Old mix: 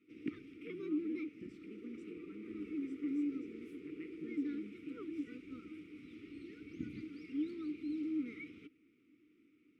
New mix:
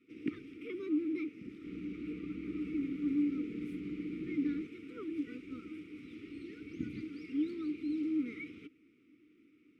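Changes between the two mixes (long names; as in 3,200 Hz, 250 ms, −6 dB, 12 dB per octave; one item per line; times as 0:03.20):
speech: add flat-topped band-pass 980 Hz, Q 0.97
first sound +4.0 dB
second sound: remove linear-phase brick-wall band-pass 320–1,100 Hz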